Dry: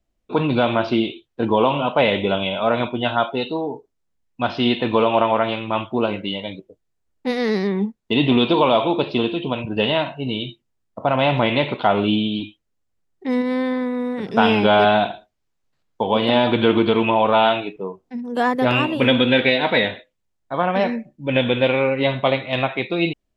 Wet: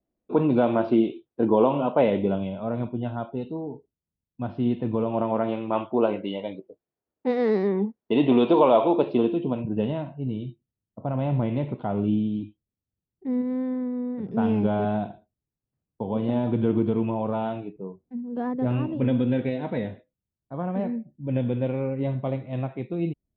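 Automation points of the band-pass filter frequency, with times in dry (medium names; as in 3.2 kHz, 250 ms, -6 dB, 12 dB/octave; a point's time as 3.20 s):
band-pass filter, Q 0.71
2.01 s 320 Hz
2.58 s 110 Hz
5.00 s 110 Hz
5.83 s 470 Hz
8.95 s 470 Hz
10.05 s 110 Hz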